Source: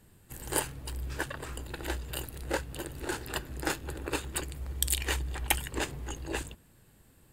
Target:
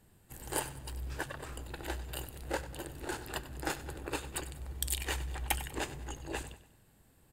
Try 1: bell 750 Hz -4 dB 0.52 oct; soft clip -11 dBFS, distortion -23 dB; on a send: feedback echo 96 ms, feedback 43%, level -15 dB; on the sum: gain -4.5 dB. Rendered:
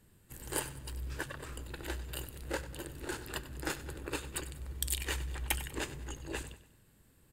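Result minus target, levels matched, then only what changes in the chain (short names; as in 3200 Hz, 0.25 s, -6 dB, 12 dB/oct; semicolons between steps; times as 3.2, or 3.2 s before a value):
1000 Hz band -3.5 dB
change: bell 750 Hz +4 dB 0.52 oct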